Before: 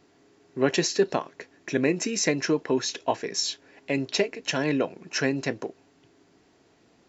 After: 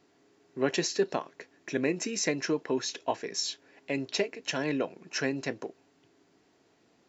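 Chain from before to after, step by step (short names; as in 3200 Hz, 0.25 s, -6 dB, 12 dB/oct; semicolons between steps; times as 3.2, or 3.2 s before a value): low shelf 79 Hz -10 dB; gain -4.5 dB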